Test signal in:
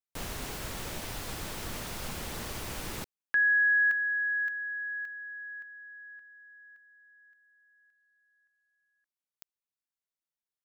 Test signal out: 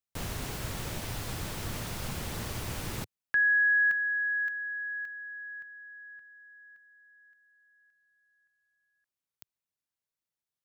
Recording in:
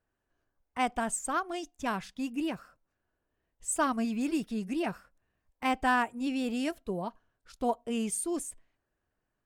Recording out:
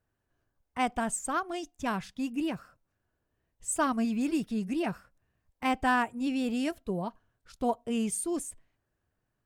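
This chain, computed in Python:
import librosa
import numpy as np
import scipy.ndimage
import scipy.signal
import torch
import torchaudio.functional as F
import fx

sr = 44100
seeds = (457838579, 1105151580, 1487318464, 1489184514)

y = fx.peak_eq(x, sr, hz=110.0, db=7.5, octaves=1.4)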